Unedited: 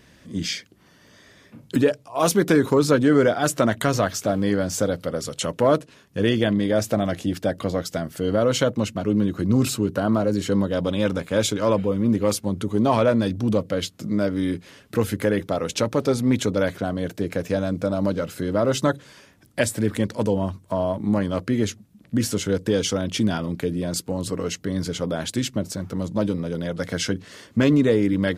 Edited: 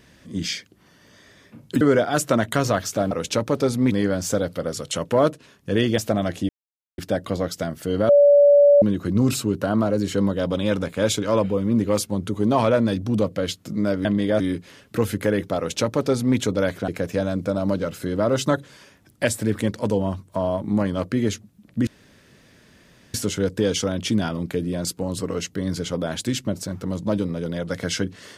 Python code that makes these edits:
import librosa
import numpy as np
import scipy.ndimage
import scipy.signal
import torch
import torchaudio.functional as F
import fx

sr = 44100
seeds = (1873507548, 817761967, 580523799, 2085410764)

y = fx.edit(x, sr, fx.cut(start_s=1.81, length_s=1.29),
    fx.move(start_s=6.46, length_s=0.35, to_s=14.39),
    fx.insert_silence(at_s=7.32, length_s=0.49),
    fx.bleep(start_s=8.43, length_s=0.73, hz=575.0, db=-9.5),
    fx.duplicate(start_s=15.56, length_s=0.81, to_s=4.4),
    fx.cut(start_s=16.87, length_s=0.37),
    fx.insert_room_tone(at_s=22.23, length_s=1.27), tone=tone)